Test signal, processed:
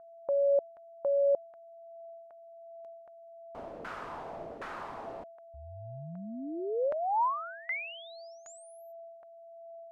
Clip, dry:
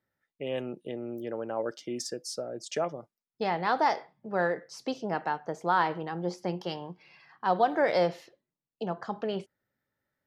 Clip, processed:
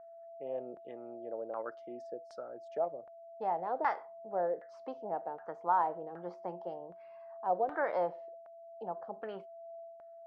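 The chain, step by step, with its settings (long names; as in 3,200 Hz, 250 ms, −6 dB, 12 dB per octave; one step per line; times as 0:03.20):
RIAA equalisation recording
steady tone 670 Hz −44 dBFS
auto-filter low-pass saw down 1.3 Hz 500–1,500 Hz
level −8 dB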